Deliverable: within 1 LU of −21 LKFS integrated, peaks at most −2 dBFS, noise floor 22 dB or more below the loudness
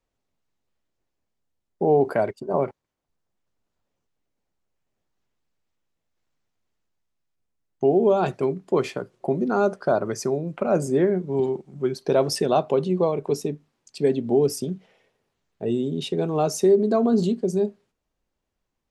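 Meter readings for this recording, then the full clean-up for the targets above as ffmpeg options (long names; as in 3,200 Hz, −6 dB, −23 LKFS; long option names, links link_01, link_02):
integrated loudness −23.5 LKFS; sample peak −9.0 dBFS; target loudness −21.0 LKFS
→ -af "volume=2.5dB"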